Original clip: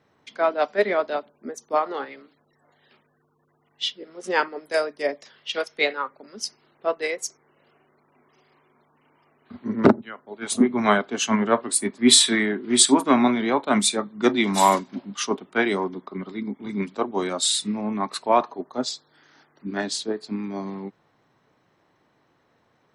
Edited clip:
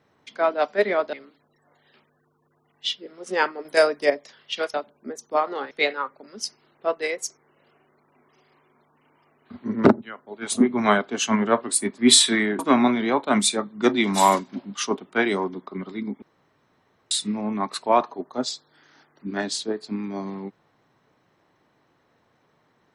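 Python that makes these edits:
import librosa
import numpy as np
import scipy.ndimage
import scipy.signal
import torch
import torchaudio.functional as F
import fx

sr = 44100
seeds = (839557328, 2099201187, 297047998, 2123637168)

y = fx.edit(x, sr, fx.move(start_s=1.13, length_s=0.97, to_s=5.71),
    fx.clip_gain(start_s=4.62, length_s=0.45, db=5.5),
    fx.cut(start_s=12.59, length_s=0.4),
    fx.room_tone_fill(start_s=16.62, length_s=0.89), tone=tone)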